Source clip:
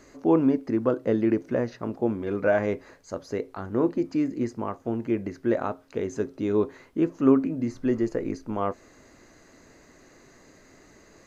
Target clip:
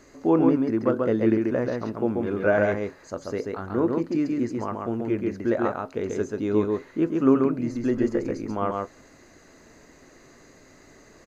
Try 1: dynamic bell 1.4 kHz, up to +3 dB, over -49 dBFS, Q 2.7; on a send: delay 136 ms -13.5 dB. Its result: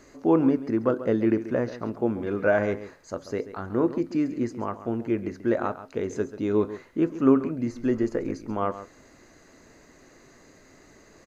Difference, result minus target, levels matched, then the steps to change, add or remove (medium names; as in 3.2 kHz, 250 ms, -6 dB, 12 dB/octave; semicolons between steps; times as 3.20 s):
echo-to-direct -10.5 dB
change: delay 136 ms -3 dB